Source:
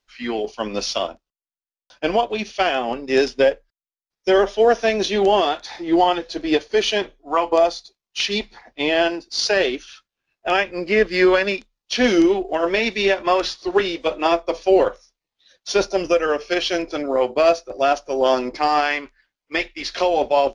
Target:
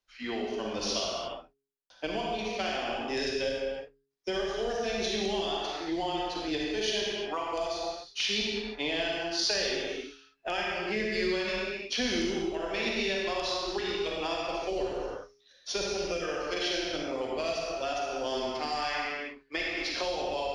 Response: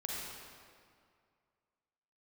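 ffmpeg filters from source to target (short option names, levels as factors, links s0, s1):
-filter_complex "[1:a]atrim=start_sample=2205,afade=t=out:st=0.41:d=0.01,atrim=end_sample=18522[s0];[0:a][s0]afir=irnorm=-1:irlink=0,acrossover=split=170|3000[s1][s2][s3];[s2]acompressor=threshold=0.0501:ratio=5[s4];[s1][s4][s3]amix=inputs=3:normalize=0,bandreject=f=137.1:t=h:w=4,bandreject=f=274.2:t=h:w=4,bandreject=f=411.3:t=h:w=4,volume=0.531"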